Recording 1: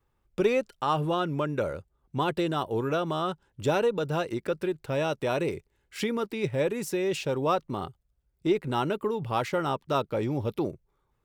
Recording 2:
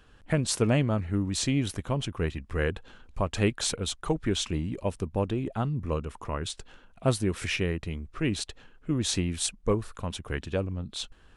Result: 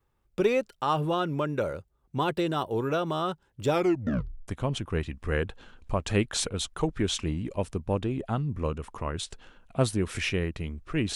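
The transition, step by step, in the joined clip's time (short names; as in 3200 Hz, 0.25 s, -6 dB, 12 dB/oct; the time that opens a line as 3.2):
recording 1
3.69 tape stop 0.79 s
4.48 switch to recording 2 from 1.75 s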